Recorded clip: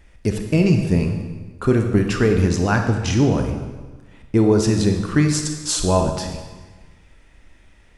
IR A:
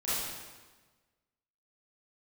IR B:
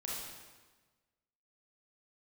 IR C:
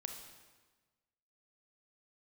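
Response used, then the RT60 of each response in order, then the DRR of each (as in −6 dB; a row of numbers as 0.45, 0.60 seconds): C; 1.3, 1.3, 1.3 seconds; −13.0, −5.5, 4.0 decibels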